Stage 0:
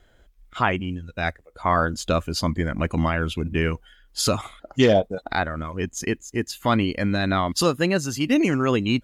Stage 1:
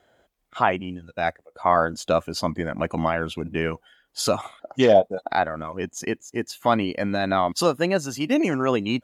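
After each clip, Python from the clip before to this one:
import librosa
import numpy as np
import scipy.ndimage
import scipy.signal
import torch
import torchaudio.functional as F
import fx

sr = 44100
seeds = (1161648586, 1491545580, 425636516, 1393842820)

y = scipy.signal.sosfilt(scipy.signal.butter(2, 130.0, 'highpass', fs=sr, output='sos'), x)
y = fx.peak_eq(y, sr, hz=710.0, db=8.0, octaves=1.1)
y = y * librosa.db_to_amplitude(-3.0)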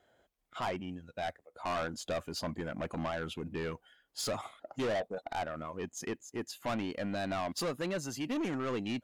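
y = 10.0 ** (-22.5 / 20.0) * np.tanh(x / 10.0 ** (-22.5 / 20.0))
y = y * librosa.db_to_amplitude(-7.5)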